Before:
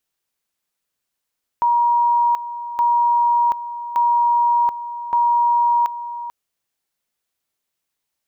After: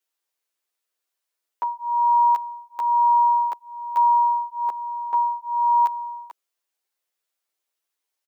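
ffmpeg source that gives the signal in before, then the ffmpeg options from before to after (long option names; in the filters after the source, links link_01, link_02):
-f lavfi -i "aevalsrc='pow(10,(-13-13*gte(mod(t,1.17),0.73))/20)*sin(2*PI*951*t)':duration=4.68:sample_rate=44100"
-filter_complex "[0:a]highpass=frequency=330:width=0.5412,highpass=frequency=330:width=1.3066,asplit=2[link_01][link_02];[link_02]adelay=10.5,afreqshift=1.1[link_03];[link_01][link_03]amix=inputs=2:normalize=1"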